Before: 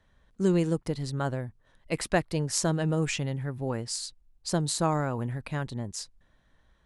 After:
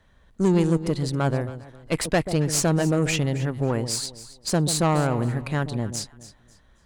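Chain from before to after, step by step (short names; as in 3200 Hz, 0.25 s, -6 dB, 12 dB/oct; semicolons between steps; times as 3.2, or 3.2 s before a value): notch 5400 Hz, Q 24; tube stage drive 23 dB, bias 0.5; echo with dull and thin repeats by turns 0.136 s, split 880 Hz, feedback 51%, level -10 dB; gain +8.5 dB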